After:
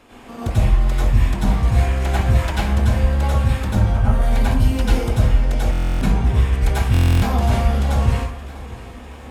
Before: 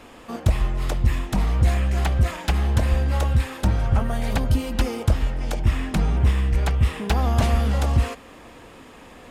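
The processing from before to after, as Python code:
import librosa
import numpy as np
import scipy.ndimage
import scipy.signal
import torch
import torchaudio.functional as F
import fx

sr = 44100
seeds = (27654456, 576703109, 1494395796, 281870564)

y = fx.high_shelf(x, sr, hz=5100.0, db=6.0, at=(6.48, 7.25))
y = fx.echo_feedback(y, sr, ms=648, feedback_pct=57, wet_db=-19.5)
y = fx.rev_plate(y, sr, seeds[0], rt60_s=0.57, hf_ratio=0.65, predelay_ms=80, drr_db=-8.0)
y = fx.rider(y, sr, range_db=10, speed_s=0.5)
y = fx.buffer_glitch(y, sr, at_s=(5.71, 6.92), block=1024, repeats=12)
y = y * librosa.db_to_amplitude(-5.5)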